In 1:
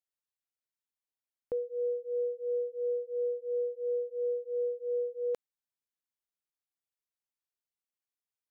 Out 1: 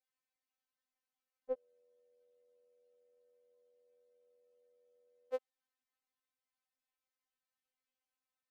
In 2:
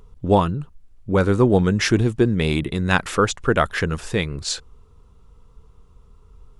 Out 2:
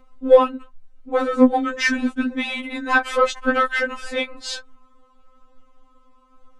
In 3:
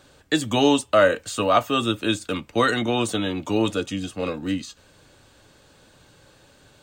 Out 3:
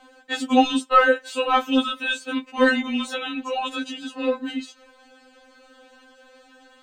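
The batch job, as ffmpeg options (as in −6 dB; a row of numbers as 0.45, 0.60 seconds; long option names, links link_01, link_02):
-filter_complex "[0:a]asplit=2[link_01][link_02];[link_02]highpass=frequency=720:poles=1,volume=11dB,asoftclip=type=tanh:threshold=-2dB[link_03];[link_01][link_03]amix=inputs=2:normalize=0,lowpass=frequency=1500:poles=1,volume=-6dB,afftfilt=real='re*3.46*eq(mod(b,12),0)':imag='im*3.46*eq(mod(b,12),0)':win_size=2048:overlap=0.75,volume=3.5dB"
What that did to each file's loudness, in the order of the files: −10.0, +0.5, 0.0 LU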